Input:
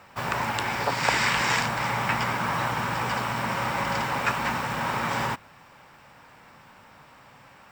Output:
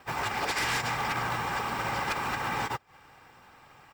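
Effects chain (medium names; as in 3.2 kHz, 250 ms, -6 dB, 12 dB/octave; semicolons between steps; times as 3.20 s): time reversed locally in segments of 159 ms; comb 2.5 ms, depth 40%; transient shaper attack +2 dB, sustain -11 dB; plain phase-vocoder stretch 0.51×; wavefolder -23 dBFS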